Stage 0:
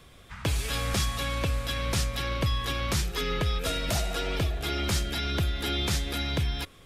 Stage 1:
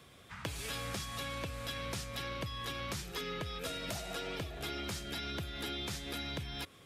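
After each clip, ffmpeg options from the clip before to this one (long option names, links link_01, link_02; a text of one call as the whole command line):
ffmpeg -i in.wav -af "highpass=96,acompressor=threshold=-33dB:ratio=6,volume=-3.5dB" out.wav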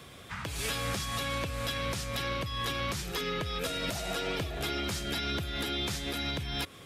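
ffmpeg -i in.wav -af "alimiter=level_in=7dB:limit=-24dB:level=0:latency=1:release=190,volume=-7dB,volume=8.5dB" out.wav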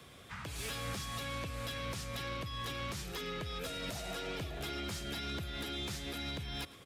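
ffmpeg -i in.wav -filter_complex "[0:a]aecho=1:1:111:0.106,acrossover=split=220[link_01][link_02];[link_02]asoftclip=type=tanh:threshold=-28.5dB[link_03];[link_01][link_03]amix=inputs=2:normalize=0,volume=-5.5dB" out.wav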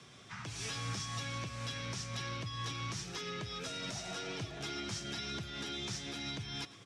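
ffmpeg -i in.wav -af "flanger=delay=5:depth=1.3:regen=-64:speed=0.54:shape=sinusoidal,highpass=110,equalizer=frequency=110:width_type=q:width=4:gain=9,equalizer=frequency=530:width_type=q:width=4:gain=-6,equalizer=frequency=5700:width_type=q:width=4:gain=9,lowpass=frequency=8800:width=0.5412,lowpass=frequency=8800:width=1.3066,volume=3.5dB" out.wav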